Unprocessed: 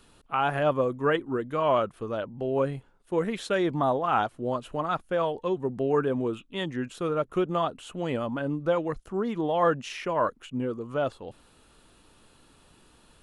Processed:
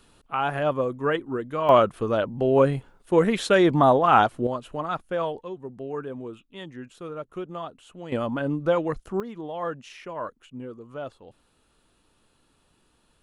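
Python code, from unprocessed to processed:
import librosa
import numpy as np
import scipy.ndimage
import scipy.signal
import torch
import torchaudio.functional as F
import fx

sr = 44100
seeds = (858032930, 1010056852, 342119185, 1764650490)

y = fx.gain(x, sr, db=fx.steps((0.0, 0.0), (1.69, 7.5), (4.47, -0.5), (5.41, -8.0), (8.12, 3.0), (9.2, -7.5)))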